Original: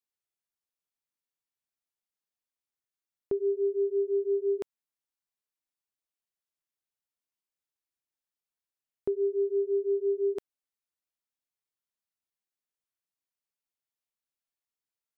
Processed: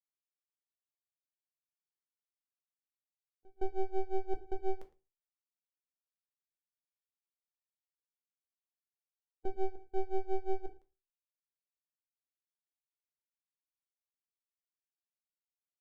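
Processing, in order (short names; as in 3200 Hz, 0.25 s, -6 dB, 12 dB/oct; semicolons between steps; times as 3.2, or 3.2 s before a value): per-bin expansion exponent 3; half-wave rectifier; step gate "xxxxxxxx.." 173 bpm -24 dB; echo 0.106 s -22.5 dB; on a send at -5 dB: reverb RT60 0.25 s, pre-delay 4 ms; on the sum: speed mistake 25 fps video run at 24 fps; gain -4 dB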